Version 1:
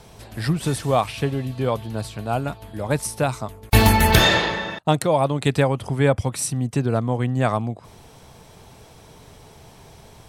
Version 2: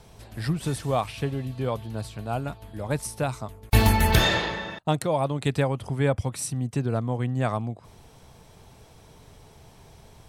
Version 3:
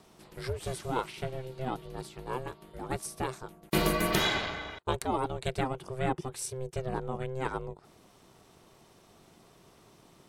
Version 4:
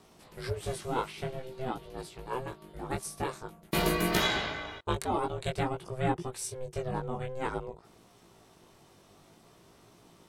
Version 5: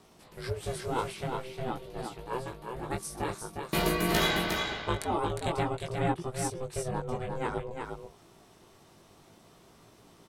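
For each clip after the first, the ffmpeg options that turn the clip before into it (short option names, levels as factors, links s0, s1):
-af "lowshelf=f=95:g=5.5,volume=0.501"
-af "lowshelf=f=150:g=-7,aeval=exprs='val(0)*sin(2*PI*260*n/s)':c=same,volume=0.75"
-af "flanger=delay=17:depth=3.3:speed=0.5,volume=1.41"
-af "aecho=1:1:357:0.562"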